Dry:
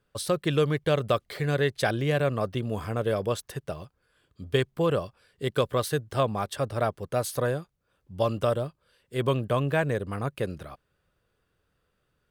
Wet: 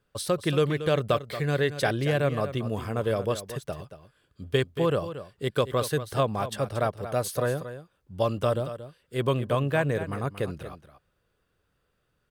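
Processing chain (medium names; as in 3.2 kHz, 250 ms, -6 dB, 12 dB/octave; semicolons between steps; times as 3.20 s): delay 230 ms -12 dB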